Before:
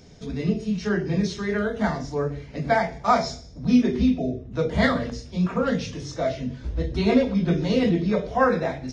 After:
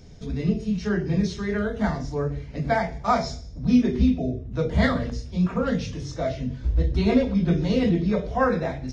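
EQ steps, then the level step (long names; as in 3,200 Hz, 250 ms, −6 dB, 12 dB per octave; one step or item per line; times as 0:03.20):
low-shelf EQ 110 Hz +12 dB
−2.5 dB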